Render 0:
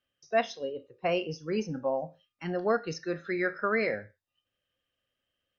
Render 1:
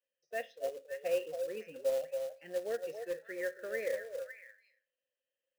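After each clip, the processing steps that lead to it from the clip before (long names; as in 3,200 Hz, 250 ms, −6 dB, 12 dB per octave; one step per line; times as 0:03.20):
formant filter e
echo through a band-pass that steps 278 ms, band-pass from 670 Hz, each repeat 1.4 octaves, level −4.5 dB
floating-point word with a short mantissa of 2 bits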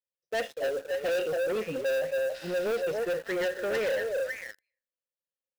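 healed spectral selection 0:02.37–0:02.79, 1,400–5,700 Hz after
low-shelf EQ 210 Hz +11.5 dB
leveller curve on the samples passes 5
level −4 dB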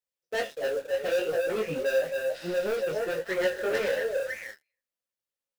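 micro pitch shift up and down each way 20 cents
level +5 dB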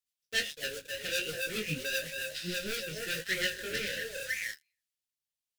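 drawn EQ curve 150 Hz 0 dB, 1,000 Hz −24 dB, 1,500 Hz −3 dB, 3,100 Hz +6 dB
rotating-speaker cabinet horn 7.5 Hz, later 0.7 Hz, at 0:02.23
in parallel at −5.5 dB: centre clipping without the shift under −46.5 dBFS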